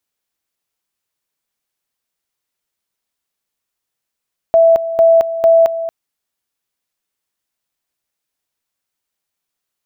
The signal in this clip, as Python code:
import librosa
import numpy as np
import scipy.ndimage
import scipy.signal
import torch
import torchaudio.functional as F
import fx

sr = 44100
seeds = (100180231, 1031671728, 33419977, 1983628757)

y = fx.two_level_tone(sr, hz=661.0, level_db=-5.5, drop_db=12.5, high_s=0.22, low_s=0.23, rounds=3)